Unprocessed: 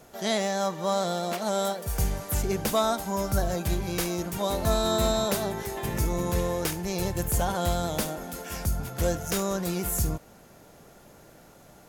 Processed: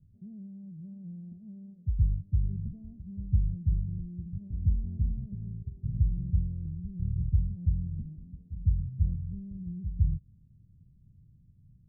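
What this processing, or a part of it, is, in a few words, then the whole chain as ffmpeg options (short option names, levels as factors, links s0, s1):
the neighbour's flat through the wall: -af "lowpass=f=150:w=0.5412,lowpass=f=150:w=1.3066,equalizer=f=93:t=o:w=0.88:g=5.5"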